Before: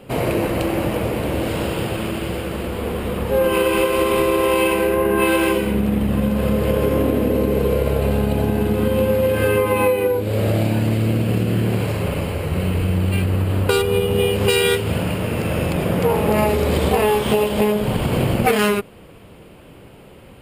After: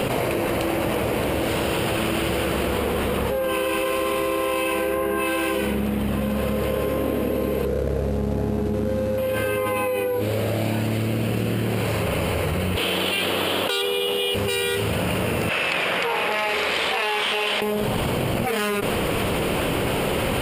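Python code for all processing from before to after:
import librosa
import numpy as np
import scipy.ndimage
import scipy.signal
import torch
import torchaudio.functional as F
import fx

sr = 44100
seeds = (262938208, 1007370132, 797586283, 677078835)

y = fx.chain(x, sr, fx.median_filter(points=41),
    fx.lowpass(hz=10000.0, slope=12),
    fx.peak_eq(hz=2200.0, db=-8.0, octaves=2.7), at=(7.65, 9.18))
y = fx.chain(y, sr, fx.highpass(hz=360.0, slope=12),
    fx.peak_eq(hz=3400.0, db=13.0, octaves=0.43),
    fx.clip_hard(threshold_db=-7.0), at=(12.76, 14.35))
y = fx.chain(y, sr, fx.bandpass_q(hz=2400.0, q=0.97),
    fx.transformer_sat(knee_hz=1400.0), at=(15.49, 17.62))
y = fx.low_shelf(y, sr, hz=380.0, db=-6.5)
y = fx.env_flatten(y, sr, amount_pct=100)
y = y * librosa.db_to_amplitude(-8.5)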